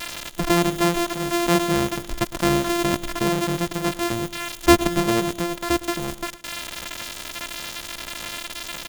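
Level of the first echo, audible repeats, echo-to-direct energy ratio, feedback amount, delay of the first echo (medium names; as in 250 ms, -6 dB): -17.0 dB, 3, -16.0 dB, 47%, 110 ms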